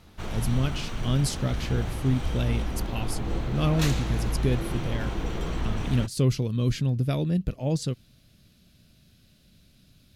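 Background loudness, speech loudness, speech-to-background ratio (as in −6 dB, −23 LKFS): −32.5 LKFS, −28.5 LKFS, 4.0 dB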